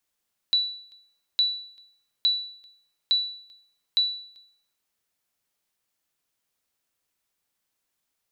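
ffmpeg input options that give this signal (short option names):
-f lavfi -i "aevalsrc='0.178*(sin(2*PI*3950*mod(t,0.86))*exp(-6.91*mod(t,0.86)/0.59)+0.0398*sin(2*PI*3950*max(mod(t,0.86)-0.39,0))*exp(-6.91*max(mod(t,0.86)-0.39,0)/0.59))':d=4.3:s=44100"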